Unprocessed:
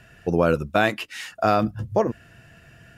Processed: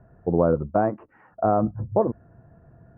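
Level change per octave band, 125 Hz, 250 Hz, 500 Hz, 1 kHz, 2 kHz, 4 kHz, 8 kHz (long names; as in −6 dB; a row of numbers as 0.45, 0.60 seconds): 0.0 dB, 0.0 dB, 0.0 dB, −1.5 dB, −15.5 dB, below −40 dB, below −35 dB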